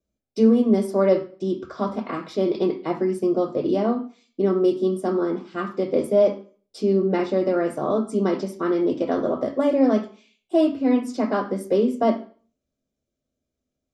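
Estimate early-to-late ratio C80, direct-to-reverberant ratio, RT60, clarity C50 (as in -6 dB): 17.0 dB, 6.0 dB, 0.40 s, 12.0 dB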